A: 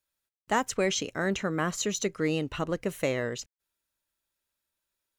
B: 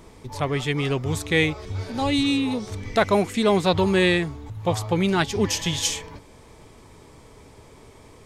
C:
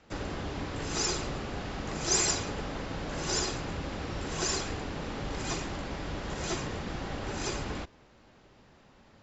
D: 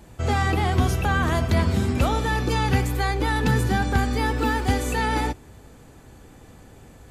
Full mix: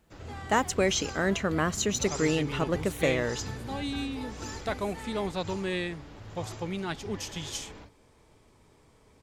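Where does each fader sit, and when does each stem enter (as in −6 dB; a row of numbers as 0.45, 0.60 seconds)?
+1.5, −12.5, −12.5, −19.5 decibels; 0.00, 1.70, 0.00, 0.00 seconds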